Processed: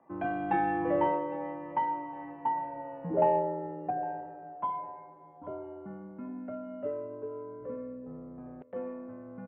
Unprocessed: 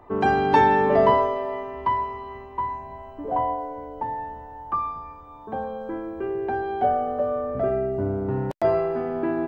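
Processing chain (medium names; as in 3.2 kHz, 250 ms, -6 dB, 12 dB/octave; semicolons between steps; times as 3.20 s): local Wiener filter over 9 samples; Doppler pass-by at 3.14 s, 19 m/s, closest 15 m; on a send: feedback delay 808 ms, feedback 41%, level -20 dB; on the sum: mistuned SSB -120 Hz 270–2900 Hz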